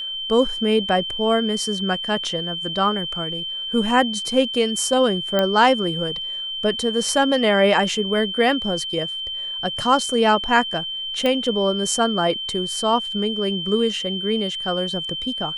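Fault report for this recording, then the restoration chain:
tone 3100 Hz -26 dBFS
5.39 pop -7 dBFS
11.26 pop -10 dBFS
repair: de-click; notch 3100 Hz, Q 30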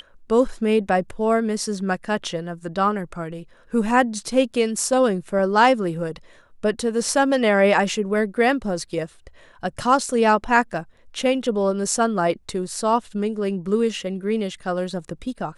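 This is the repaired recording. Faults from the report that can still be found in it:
11.26 pop

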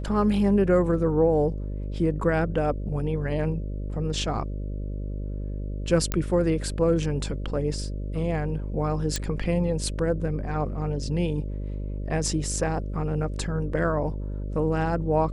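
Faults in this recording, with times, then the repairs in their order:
buzz 50 Hz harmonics 12 -31 dBFS
6.12 pop -10 dBFS
9.16 pop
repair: de-click; de-hum 50 Hz, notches 12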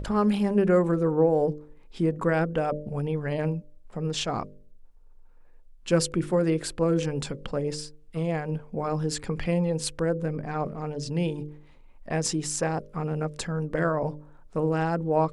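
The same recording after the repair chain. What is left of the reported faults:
none

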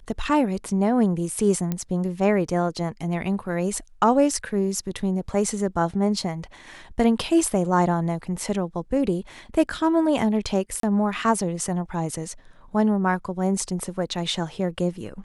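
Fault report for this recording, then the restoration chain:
1.72 pop -13 dBFS
10.8–10.83 gap 33 ms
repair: de-click; interpolate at 10.8, 33 ms

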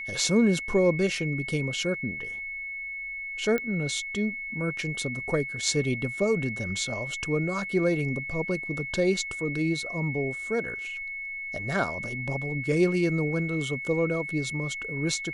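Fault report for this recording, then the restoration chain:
tone 2200 Hz -33 dBFS
3.58 pop -17 dBFS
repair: de-click; notch 2200 Hz, Q 30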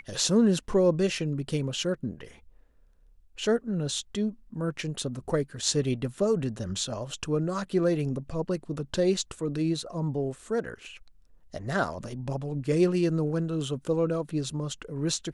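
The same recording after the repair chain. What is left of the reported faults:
none

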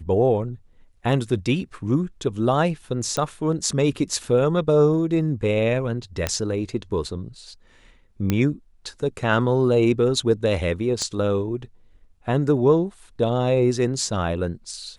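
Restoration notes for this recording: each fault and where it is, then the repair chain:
3.17 pop -11 dBFS
6.27 pop -7 dBFS
8.3 pop -8 dBFS
11.02 pop -15 dBFS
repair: de-click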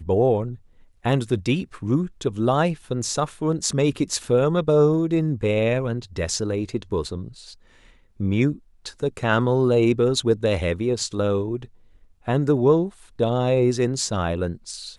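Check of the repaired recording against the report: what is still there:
11.02 pop

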